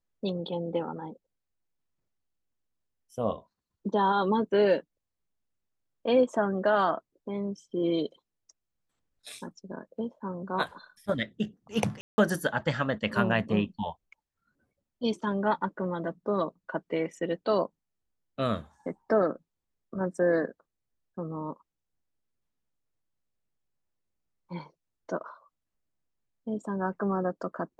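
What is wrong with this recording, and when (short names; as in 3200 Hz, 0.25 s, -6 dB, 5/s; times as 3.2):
12.01–12.18 gap 0.17 s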